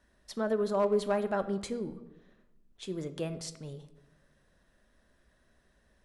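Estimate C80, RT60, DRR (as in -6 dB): 16.0 dB, 1.1 s, 10.5 dB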